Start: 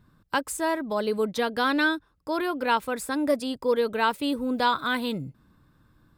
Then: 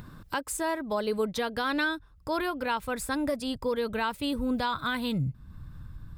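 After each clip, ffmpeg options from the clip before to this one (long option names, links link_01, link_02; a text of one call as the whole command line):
ffmpeg -i in.wav -af "asubboost=boost=8:cutoff=120,acompressor=mode=upward:threshold=-34dB:ratio=2.5,alimiter=limit=-19.5dB:level=0:latency=1:release=189" out.wav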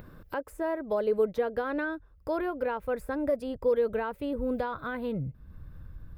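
ffmpeg -i in.wav -filter_complex "[0:a]equalizer=frequency=125:width_type=o:width=1:gain=-5,equalizer=frequency=250:width_type=o:width=1:gain=-4,equalizer=frequency=500:width_type=o:width=1:gain=7,equalizer=frequency=1000:width_type=o:width=1:gain=-6,equalizer=frequency=4000:width_type=o:width=1:gain=-7,equalizer=frequency=8000:width_type=o:width=1:gain=-10,acrossover=split=1800[link_01][link_02];[link_02]acompressor=threshold=-54dB:ratio=5[link_03];[link_01][link_03]amix=inputs=2:normalize=0" out.wav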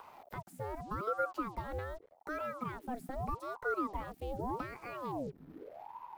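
ffmpeg -i in.wav -filter_complex "[0:a]acrusher=bits=8:mix=0:aa=0.5,acrossover=split=470|3000[link_01][link_02][link_03];[link_02]acompressor=threshold=-54dB:ratio=1.5[link_04];[link_01][link_04][link_03]amix=inputs=3:normalize=0,aeval=exprs='val(0)*sin(2*PI*590*n/s+590*0.65/0.83*sin(2*PI*0.83*n/s))':channel_layout=same,volume=-3dB" out.wav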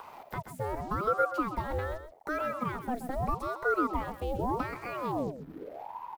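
ffmpeg -i in.wav -af "aecho=1:1:129:0.282,volume=6.5dB" out.wav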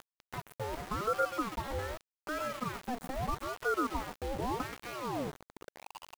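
ffmpeg -i in.wav -af "aeval=exprs='val(0)*gte(abs(val(0)),0.0168)':channel_layout=same,volume=-3.5dB" out.wav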